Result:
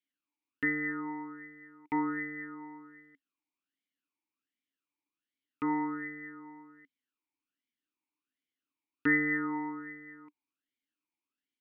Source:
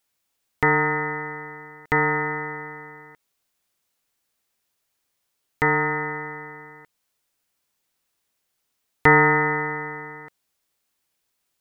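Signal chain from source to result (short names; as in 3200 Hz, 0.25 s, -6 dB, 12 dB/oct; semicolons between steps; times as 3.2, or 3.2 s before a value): vowel sweep i-u 1.3 Hz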